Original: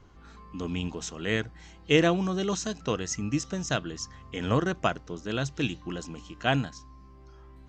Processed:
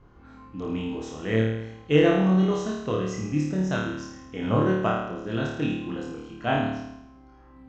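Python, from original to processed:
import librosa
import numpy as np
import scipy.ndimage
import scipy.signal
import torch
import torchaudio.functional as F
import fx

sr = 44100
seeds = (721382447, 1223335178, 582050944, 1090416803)

y = fx.lowpass(x, sr, hz=1300.0, slope=6)
y = fx.room_flutter(y, sr, wall_m=4.6, rt60_s=0.87)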